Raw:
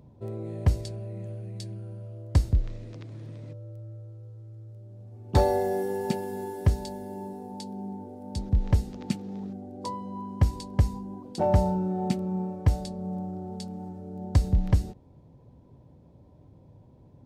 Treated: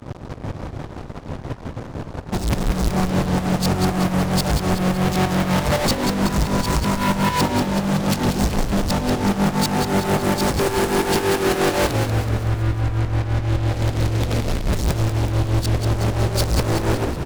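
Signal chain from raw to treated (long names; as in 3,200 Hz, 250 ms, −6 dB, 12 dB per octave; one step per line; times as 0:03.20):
played backwards from end to start
low-pass filter 7,200 Hz
high-shelf EQ 3,600 Hz +8.5 dB
notch filter 430 Hz, Q 13
fuzz pedal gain 55 dB, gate −53 dBFS
shaped tremolo saw up 5.9 Hz, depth 80%
hard clipping −17 dBFS, distortion −16 dB
on a send: echo with shifted repeats 188 ms, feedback 60%, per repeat −45 Hz, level −6 dB
on the sum: expander for the loud parts 1.5 to 1, over −33 dBFS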